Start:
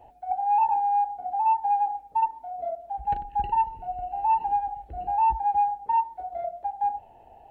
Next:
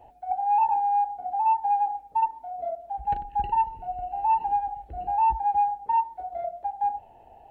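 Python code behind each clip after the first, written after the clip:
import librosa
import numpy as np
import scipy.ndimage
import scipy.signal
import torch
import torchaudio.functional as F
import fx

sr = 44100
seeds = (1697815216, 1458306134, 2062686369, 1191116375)

y = x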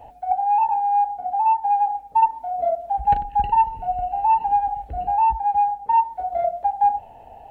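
y = fx.peak_eq(x, sr, hz=360.0, db=-10.5, octaves=0.21)
y = fx.rider(y, sr, range_db=4, speed_s=0.5)
y = y * 10.0 ** (6.0 / 20.0)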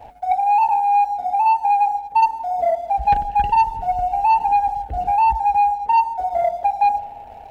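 y = fx.leveller(x, sr, passes=1)
y = fx.echo_bbd(y, sr, ms=173, stages=1024, feedback_pct=54, wet_db=-16.0)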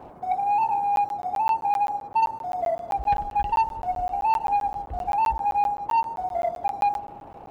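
y = fx.dmg_noise_band(x, sr, seeds[0], low_hz=80.0, high_hz=920.0, level_db=-40.0)
y = fx.buffer_crackle(y, sr, first_s=0.96, period_s=0.13, block=512, kind='zero')
y = y * 10.0 ** (-6.5 / 20.0)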